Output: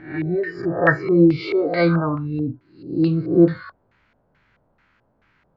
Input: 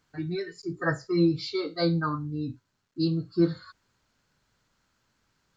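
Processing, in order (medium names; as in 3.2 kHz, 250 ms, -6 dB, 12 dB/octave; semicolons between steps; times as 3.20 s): reverse spectral sustain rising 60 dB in 0.51 s; vibrato 1.2 Hz 6.7 cents; LFO low-pass square 2.3 Hz 670–2200 Hz; trim +7 dB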